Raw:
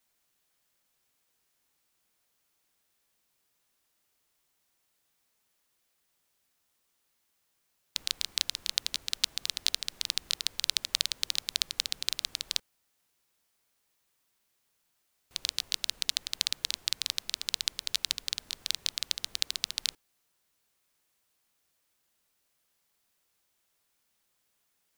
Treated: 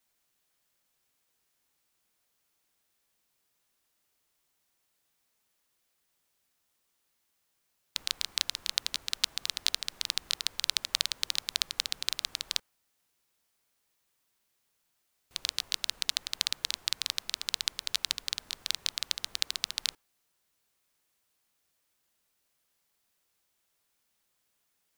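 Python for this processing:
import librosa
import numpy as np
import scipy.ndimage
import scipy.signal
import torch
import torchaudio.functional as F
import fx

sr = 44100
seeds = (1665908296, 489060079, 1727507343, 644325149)

y = fx.dynamic_eq(x, sr, hz=1100.0, q=0.76, threshold_db=-54.0, ratio=4.0, max_db=5)
y = y * 10.0 ** (-1.0 / 20.0)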